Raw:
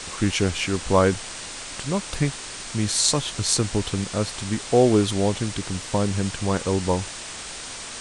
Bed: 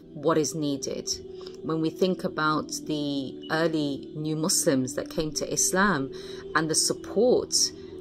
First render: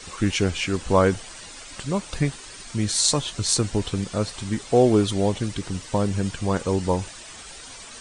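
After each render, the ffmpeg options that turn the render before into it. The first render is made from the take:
-af "afftdn=nr=10:nf=-36"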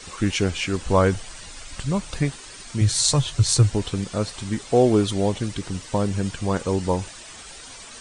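-filter_complex "[0:a]asettb=1/sr,asplit=3[s0][s1][s2];[s0]atrim=end=0.644[s3];[s1]atrim=start=0.64:end=2.11,asetpts=PTS-STARTPTS,afade=t=in:d=0.004:c=qsin,afade=t=out:st=1.466:d=0.004:c=qsin,asubboost=boost=6.5:cutoff=160[s4];[s2]atrim=start=2.106[s5];[s3][s4]acrossfade=d=0.004:c1=hsin:c2=qsin[s6];[s6][s5]acrossfade=d=0.004:c1=qsin:c2=hsin,asettb=1/sr,asplit=3[s7][s8][s9];[s7]atrim=end=2.814[s10];[s8]atrim=start=2.81:end=3.7,asetpts=PTS-STARTPTS,afade=t=in:d=0.004:c=qsin,afade=t=out:st=0.886:d=0.004:c=qsin,lowshelf=f=160:t=q:w=3:g=6.5[s11];[s9]atrim=start=3.696[s12];[s10][s11]acrossfade=d=0.004:c1=hsin:c2=qsin[s13];[s13][s12]acrossfade=d=0.004:c1=qsin:c2=hsin"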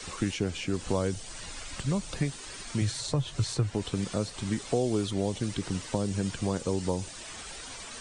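-filter_complex "[0:a]acrossover=split=110|630|3300[s0][s1][s2][s3];[s0]acompressor=threshold=0.00891:ratio=4[s4];[s1]acompressor=threshold=0.0447:ratio=4[s5];[s2]acompressor=threshold=0.00794:ratio=4[s6];[s3]acompressor=threshold=0.00794:ratio=4[s7];[s4][s5][s6][s7]amix=inputs=4:normalize=0"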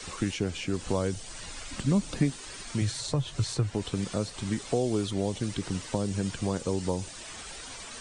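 -filter_complex "[0:a]asettb=1/sr,asplit=3[s0][s1][s2];[s0]atrim=end=1.714[s3];[s1]atrim=start=1.71:end=2.34,asetpts=PTS-STARTPTS,afade=t=in:d=0.004:c=qsin,afade=t=out:st=0.626:d=0.004:c=qsin,equalizer=f=250:t=o:w=0.82:g=10[s4];[s2]atrim=start=2.336[s5];[s3][s4]acrossfade=d=0.004:c1=hsin:c2=qsin[s6];[s6][s5]acrossfade=d=0.004:c1=qsin:c2=hsin"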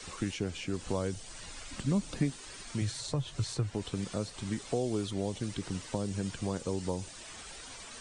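-af "volume=0.596"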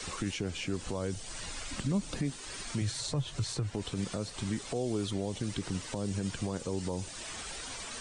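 -filter_complex "[0:a]asplit=2[s0][s1];[s1]acompressor=threshold=0.00794:ratio=6,volume=0.891[s2];[s0][s2]amix=inputs=2:normalize=0,alimiter=limit=0.0708:level=0:latency=1:release=53"

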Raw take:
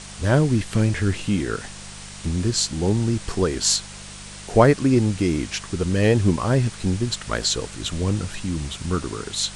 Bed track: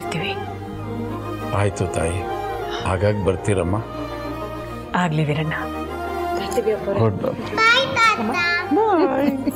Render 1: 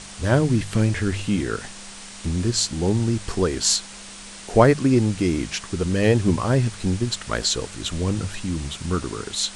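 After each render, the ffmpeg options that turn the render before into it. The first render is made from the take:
-af "bandreject=f=50:t=h:w=4,bandreject=f=100:t=h:w=4,bandreject=f=150:t=h:w=4"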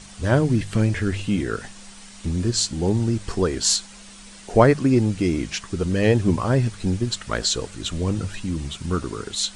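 -af "afftdn=nr=7:nf=-40"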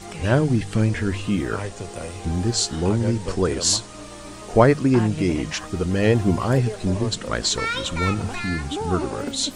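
-filter_complex "[1:a]volume=0.266[s0];[0:a][s0]amix=inputs=2:normalize=0"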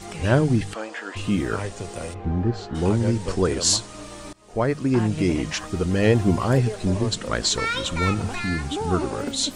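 -filter_complex "[0:a]asplit=3[s0][s1][s2];[s0]afade=t=out:st=0.73:d=0.02[s3];[s1]highpass=f=400:w=0.5412,highpass=f=400:w=1.3066,equalizer=f=400:t=q:w=4:g=-10,equalizer=f=780:t=q:w=4:g=4,equalizer=f=1200:t=q:w=4:g=3,equalizer=f=2200:t=q:w=4:g=-7,equalizer=f=4000:t=q:w=4:g=-5,equalizer=f=5800:t=q:w=4:g=-8,lowpass=f=7200:w=0.5412,lowpass=f=7200:w=1.3066,afade=t=in:st=0.73:d=0.02,afade=t=out:st=1.15:d=0.02[s4];[s2]afade=t=in:st=1.15:d=0.02[s5];[s3][s4][s5]amix=inputs=3:normalize=0,asplit=3[s6][s7][s8];[s6]afade=t=out:st=2.13:d=0.02[s9];[s7]lowpass=1600,afade=t=in:st=2.13:d=0.02,afade=t=out:st=2.74:d=0.02[s10];[s8]afade=t=in:st=2.74:d=0.02[s11];[s9][s10][s11]amix=inputs=3:normalize=0,asplit=2[s12][s13];[s12]atrim=end=4.33,asetpts=PTS-STARTPTS,afade=t=out:st=4.326:d=0.004:c=hsin:silence=0.0630957[s14];[s13]atrim=start=4.33,asetpts=PTS-STARTPTS,afade=t=in:d=0.87:silence=0.0630957[s15];[s14][s15]concat=n=2:v=0:a=1"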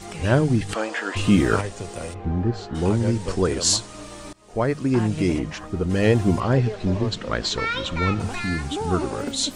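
-filter_complex "[0:a]asplit=3[s0][s1][s2];[s0]afade=t=out:st=5.38:d=0.02[s3];[s1]highshelf=f=2100:g=-11.5,afade=t=in:st=5.38:d=0.02,afade=t=out:st=5.89:d=0.02[s4];[s2]afade=t=in:st=5.89:d=0.02[s5];[s3][s4][s5]amix=inputs=3:normalize=0,asettb=1/sr,asplit=3[s6][s7][s8];[s6]atrim=end=6.404[s9];[s7]atrim=start=6.4:end=8.2,asetpts=PTS-STARTPTS,afade=t=in:d=0.004:c=qsin,afade=t=out:st=1.796:d=0.004:c=qsin,lowpass=4500[s10];[s8]atrim=start=8.196[s11];[s9][s10]acrossfade=d=0.004:c1=hsin:c2=qsin[s12];[s12][s11]acrossfade=d=0.004:c1=qsin:c2=hsin,asplit=3[s13][s14][s15];[s13]atrim=end=0.692[s16];[s14]atrim=start=0.688:end=1.612,asetpts=PTS-STARTPTS,volume=2[s17];[s15]atrim=start=1.608[s18];[s16][s17]acrossfade=d=0.004:c1=hsin:c2=hsin[s19];[s19][s18]acrossfade=d=0.004:c1=hsin:c2=hsin"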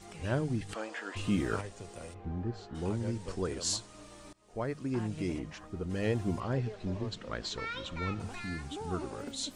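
-af "volume=0.224"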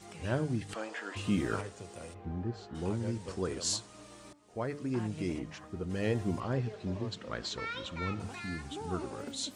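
-af "highpass=70,bandreject=f=145.9:t=h:w=4,bandreject=f=291.8:t=h:w=4,bandreject=f=437.7:t=h:w=4,bandreject=f=583.6:t=h:w=4,bandreject=f=729.5:t=h:w=4,bandreject=f=875.4:t=h:w=4,bandreject=f=1021.3:t=h:w=4,bandreject=f=1167.2:t=h:w=4,bandreject=f=1313.1:t=h:w=4,bandreject=f=1459:t=h:w=4,bandreject=f=1604.9:t=h:w=4,bandreject=f=1750.8:t=h:w=4,bandreject=f=1896.7:t=h:w=4,bandreject=f=2042.6:t=h:w=4,bandreject=f=2188.5:t=h:w=4"

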